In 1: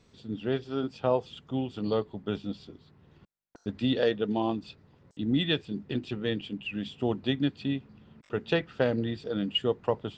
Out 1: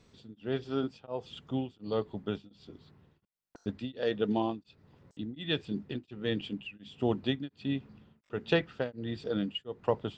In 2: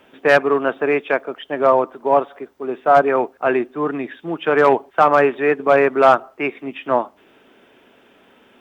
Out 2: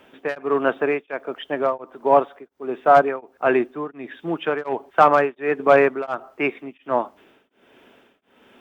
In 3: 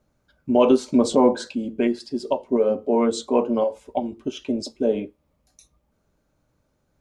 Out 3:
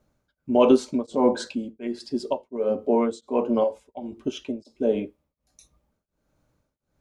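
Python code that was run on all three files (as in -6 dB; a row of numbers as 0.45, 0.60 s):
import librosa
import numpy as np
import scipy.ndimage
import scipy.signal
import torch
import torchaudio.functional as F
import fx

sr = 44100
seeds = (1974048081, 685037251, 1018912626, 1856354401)

y = x * np.abs(np.cos(np.pi * 1.4 * np.arange(len(x)) / sr))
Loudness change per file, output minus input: -4.0, -3.5, -2.5 LU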